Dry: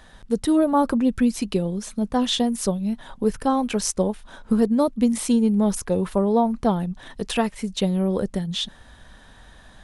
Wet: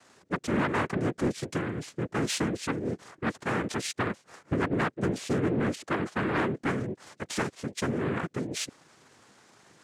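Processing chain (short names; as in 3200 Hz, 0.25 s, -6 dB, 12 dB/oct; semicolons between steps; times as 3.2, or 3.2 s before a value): noise vocoder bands 3; soft clip -13 dBFS, distortion -16 dB; gain -6.5 dB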